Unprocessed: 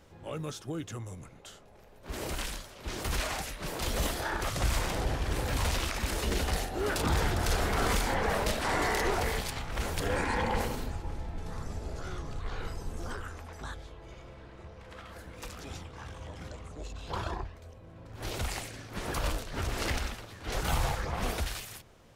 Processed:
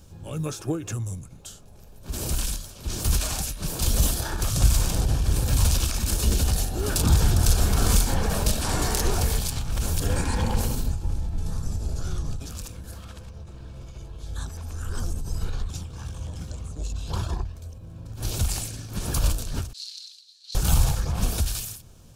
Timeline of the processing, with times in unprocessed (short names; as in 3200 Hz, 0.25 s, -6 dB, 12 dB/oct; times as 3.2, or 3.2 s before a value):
0.46–0.94 spectral gain 280–2800 Hz +10 dB
12.4–15.7 reverse
19.73–20.55 ladder band-pass 4400 Hz, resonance 80%
whole clip: tone controls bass +13 dB, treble +14 dB; notch 2000 Hz, Q 5.3; ending taper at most 110 dB/s; gain -1 dB